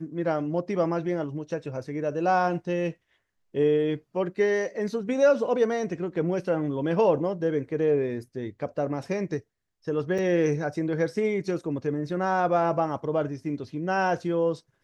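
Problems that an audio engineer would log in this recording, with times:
0:10.18–0:10.19: drop-out 5.3 ms

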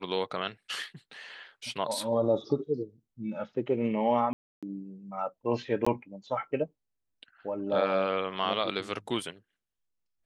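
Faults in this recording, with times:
0:04.33–0:04.63: drop-out 296 ms
0:05.85–0:05.87: drop-out 15 ms

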